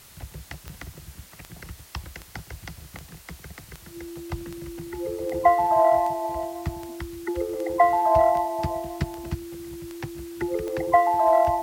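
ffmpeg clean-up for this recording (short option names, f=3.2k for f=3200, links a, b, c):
-af "adeclick=t=4,bandreject=f=340:w=30,afwtdn=0.0035"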